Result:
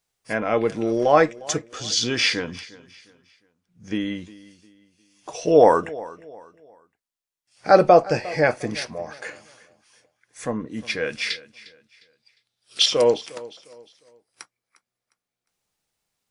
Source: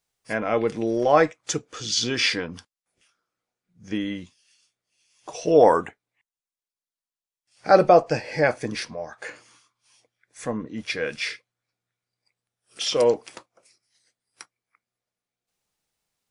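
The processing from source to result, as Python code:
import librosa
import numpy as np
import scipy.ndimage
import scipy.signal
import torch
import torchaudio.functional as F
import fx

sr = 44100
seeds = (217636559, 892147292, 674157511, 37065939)

p1 = fx.peak_eq(x, sr, hz=3900.0, db=15.0, octaves=0.99, at=(11.3, 12.86))
p2 = p1 + fx.echo_feedback(p1, sr, ms=355, feedback_pct=34, wet_db=-19.5, dry=0)
y = F.gain(torch.from_numpy(p2), 1.5).numpy()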